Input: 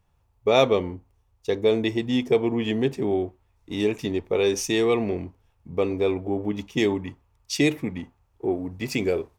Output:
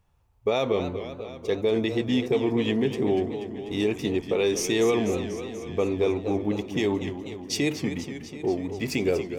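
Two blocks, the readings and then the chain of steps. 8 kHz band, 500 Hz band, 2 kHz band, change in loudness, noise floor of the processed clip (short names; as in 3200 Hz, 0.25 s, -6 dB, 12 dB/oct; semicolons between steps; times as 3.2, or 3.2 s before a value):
+0.5 dB, -1.5 dB, -2.0 dB, -2.0 dB, -48 dBFS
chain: limiter -15 dBFS, peak gain reduction 9.5 dB; warbling echo 0.244 s, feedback 69%, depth 154 cents, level -10.5 dB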